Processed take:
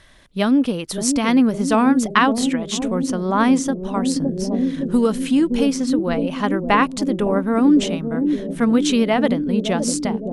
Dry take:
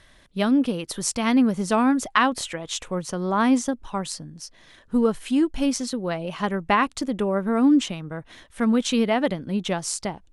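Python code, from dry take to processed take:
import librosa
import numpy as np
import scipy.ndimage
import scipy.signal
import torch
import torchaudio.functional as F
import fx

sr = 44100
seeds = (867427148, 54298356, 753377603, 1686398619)

y = fx.echo_bbd(x, sr, ms=564, stages=2048, feedback_pct=72, wet_db=-6)
y = fx.band_squash(y, sr, depth_pct=70, at=(4.16, 5.99))
y = y * librosa.db_to_amplitude(3.5)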